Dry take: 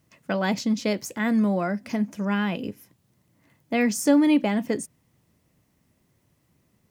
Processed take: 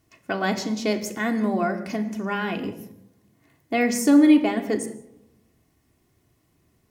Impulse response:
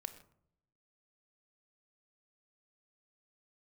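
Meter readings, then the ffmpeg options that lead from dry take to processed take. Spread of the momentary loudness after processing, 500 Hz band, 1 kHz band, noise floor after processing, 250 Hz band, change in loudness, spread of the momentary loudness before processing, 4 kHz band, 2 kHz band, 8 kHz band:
14 LU, +1.5 dB, +2.5 dB, -67 dBFS, +2.0 dB, +1.5 dB, 11 LU, +1.0 dB, +2.0 dB, +1.0 dB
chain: -filter_complex "[1:a]atrim=start_sample=2205,asetrate=34398,aresample=44100[s0];[0:a][s0]afir=irnorm=-1:irlink=0,volume=1.5"

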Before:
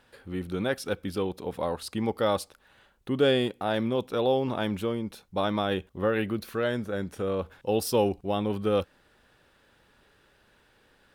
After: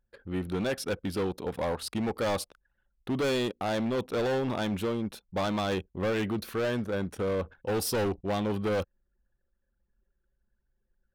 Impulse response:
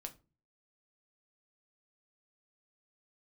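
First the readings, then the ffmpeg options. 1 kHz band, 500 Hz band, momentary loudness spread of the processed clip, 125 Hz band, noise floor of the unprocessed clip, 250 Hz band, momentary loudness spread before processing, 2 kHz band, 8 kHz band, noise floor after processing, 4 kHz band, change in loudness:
-2.5 dB, -3.0 dB, 5 LU, -0.5 dB, -64 dBFS, -1.5 dB, 8 LU, -1.0 dB, +2.0 dB, -79 dBFS, -2.5 dB, -2.0 dB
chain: -af "volume=22.4,asoftclip=hard,volume=0.0447,anlmdn=0.00631,volume=1.19"

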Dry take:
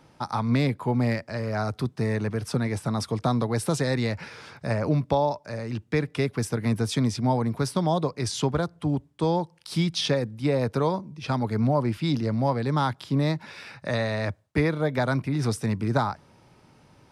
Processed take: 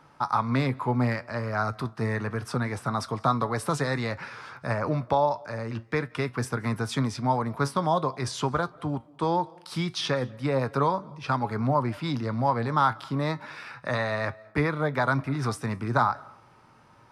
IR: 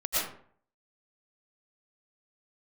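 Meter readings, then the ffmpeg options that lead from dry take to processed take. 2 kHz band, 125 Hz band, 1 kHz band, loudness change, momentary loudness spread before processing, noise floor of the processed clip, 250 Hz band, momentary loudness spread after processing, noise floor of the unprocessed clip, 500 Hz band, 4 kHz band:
+2.0 dB, -3.5 dB, +3.5 dB, -1.5 dB, 6 LU, -56 dBFS, -4.0 dB, 7 LU, -58 dBFS, -2.0 dB, -3.0 dB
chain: -filter_complex "[0:a]equalizer=f=1200:w=1.1:g=11.5,flanger=delay=6.8:depth=2.2:regen=75:speed=0.27:shape=triangular,asplit=2[s0][s1];[1:a]atrim=start_sample=2205,adelay=69[s2];[s1][s2]afir=irnorm=-1:irlink=0,volume=0.0224[s3];[s0][s3]amix=inputs=2:normalize=0"

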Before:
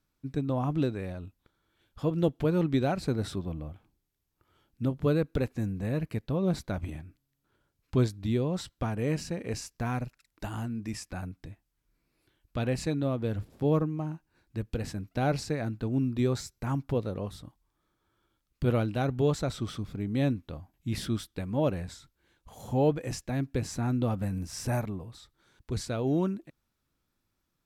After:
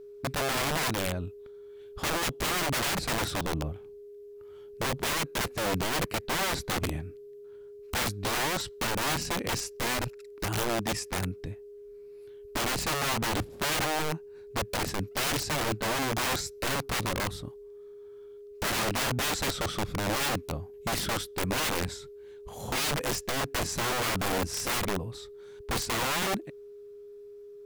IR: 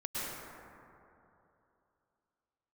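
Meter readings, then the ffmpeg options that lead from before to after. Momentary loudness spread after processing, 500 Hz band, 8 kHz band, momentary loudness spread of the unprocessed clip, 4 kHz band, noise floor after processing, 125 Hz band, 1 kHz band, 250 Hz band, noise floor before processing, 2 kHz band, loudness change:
20 LU, -1.5 dB, +12.5 dB, 13 LU, +13.5 dB, -47 dBFS, -5.5 dB, +7.5 dB, -5.5 dB, -80 dBFS, +12.0 dB, +1.5 dB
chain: -af "aeval=exprs='(mod(31.6*val(0)+1,2)-1)/31.6':c=same,aeval=exprs='val(0)+0.00316*sin(2*PI*410*n/s)':c=same,volume=2"

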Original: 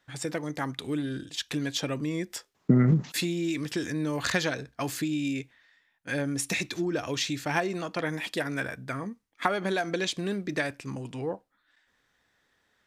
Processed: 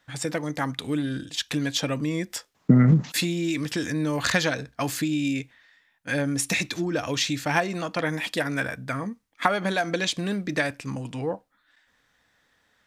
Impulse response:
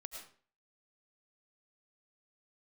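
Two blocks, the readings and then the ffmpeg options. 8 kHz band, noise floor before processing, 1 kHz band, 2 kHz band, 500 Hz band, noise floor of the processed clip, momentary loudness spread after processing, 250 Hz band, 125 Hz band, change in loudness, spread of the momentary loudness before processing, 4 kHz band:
+4.5 dB, -72 dBFS, +4.5 dB, +4.5 dB, +2.5 dB, -68 dBFS, 9 LU, +4.0 dB, +4.5 dB, +4.0 dB, 9 LU, +4.5 dB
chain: -af "equalizer=f=380:w=7.4:g=-9,volume=1.68"

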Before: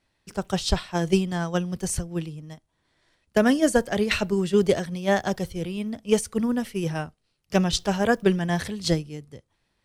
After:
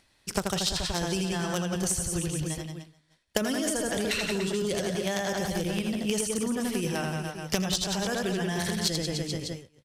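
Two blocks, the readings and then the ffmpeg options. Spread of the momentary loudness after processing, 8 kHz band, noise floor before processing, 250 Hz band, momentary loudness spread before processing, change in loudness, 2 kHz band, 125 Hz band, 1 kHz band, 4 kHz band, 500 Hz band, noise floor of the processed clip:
5 LU, +3.5 dB, -74 dBFS, -5.0 dB, 11 LU, -4.0 dB, -3.0 dB, -4.0 dB, -5.0 dB, +1.5 dB, -6.5 dB, -66 dBFS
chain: -filter_complex "[0:a]highshelf=f=2600:g=8,aecho=1:1:80|176|291.2|429.4|595.3:0.631|0.398|0.251|0.158|0.1,agate=range=0.0224:threshold=0.00708:ratio=3:detection=peak,acrossover=split=3500[s0][s1];[s0]alimiter=limit=0.158:level=0:latency=1:release=12[s2];[s2][s1]amix=inputs=2:normalize=0,acompressor=threshold=0.0316:ratio=12,asplit=2[s3][s4];[s4]acrusher=bits=3:mix=0:aa=0.000001,volume=0.501[s5];[s3][s5]amix=inputs=2:normalize=0,acompressor=mode=upward:threshold=0.00501:ratio=2.5,aresample=32000,aresample=44100,volume=1.68"

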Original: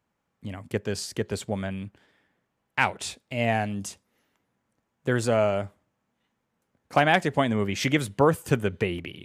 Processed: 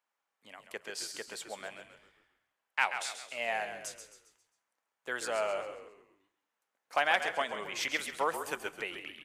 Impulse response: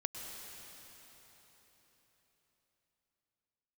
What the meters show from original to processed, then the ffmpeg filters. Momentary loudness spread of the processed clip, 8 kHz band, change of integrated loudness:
17 LU, -4.0 dB, -8.5 dB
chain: -filter_complex "[0:a]highpass=780,asplit=6[s0][s1][s2][s3][s4][s5];[s1]adelay=134,afreqshift=-61,volume=0.355[s6];[s2]adelay=268,afreqshift=-122,volume=0.15[s7];[s3]adelay=402,afreqshift=-183,volume=0.0624[s8];[s4]adelay=536,afreqshift=-244,volume=0.0263[s9];[s5]adelay=670,afreqshift=-305,volume=0.0111[s10];[s0][s6][s7][s8][s9][s10]amix=inputs=6:normalize=0,asplit=2[s11][s12];[1:a]atrim=start_sample=2205,afade=t=out:st=0.27:d=0.01,atrim=end_sample=12348[s13];[s12][s13]afir=irnorm=-1:irlink=0,volume=0.422[s14];[s11][s14]amix=inputs=2:normalize=0,volume=0.422"

